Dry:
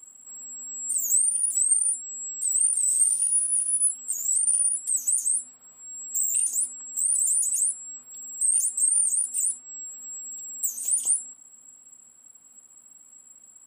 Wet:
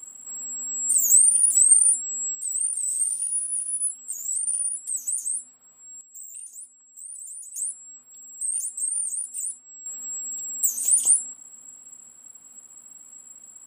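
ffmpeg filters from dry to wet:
ffmpeg -i in.wav -af "asetnsamples=nb_out_samples=441:pad=0,asendcmd='2.35 volume volume -3.5dB;6.01 volume volume -15.5dB;7.56 volume volume -5dB;9.86 volume volume 5dB',volume=6dB" out.wav

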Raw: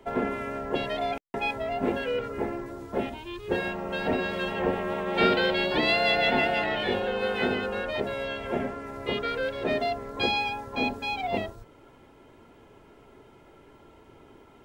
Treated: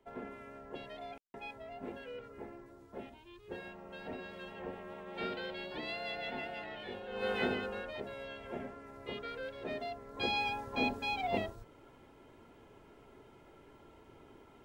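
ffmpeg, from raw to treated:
ffmpeg -i in.wav -af "volume=2.5dB,afade=type=in:start_time=7.08:duration=0.23:silence=0.266073,afade=type=out:start_time=7.31:duration=0.64:silence=0.421697,afade=type=in:start_time=10.06:duration=0.43:silence=0.398107" out.wav

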